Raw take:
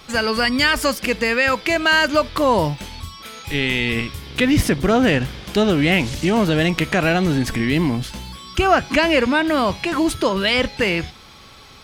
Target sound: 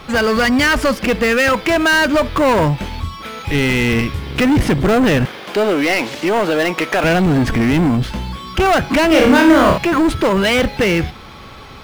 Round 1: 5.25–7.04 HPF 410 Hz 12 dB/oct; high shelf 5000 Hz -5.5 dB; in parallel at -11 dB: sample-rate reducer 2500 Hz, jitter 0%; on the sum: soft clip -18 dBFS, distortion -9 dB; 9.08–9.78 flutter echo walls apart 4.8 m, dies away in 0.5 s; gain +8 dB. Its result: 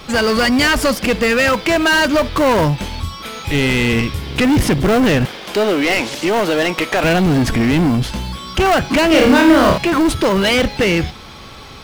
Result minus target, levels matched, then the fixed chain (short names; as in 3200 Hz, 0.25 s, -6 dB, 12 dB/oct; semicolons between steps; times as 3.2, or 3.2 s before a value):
sample-rate reducer: distortion +9 dB; 8000 Hz band +2.5 dB
5.25–7.04 HPF 410 Hz 12 dB/oct; high shelf 5000 Hz -15.5 dB; in parallel at -11 dB: sample-rate reducer 7900 Hz, jitter 0%; on the sum: soft clip -18 dBFS, distortion -9 dB; 9.08–9.78 flutter echo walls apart 4.8 m, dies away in 0.5 s; gain +8 dB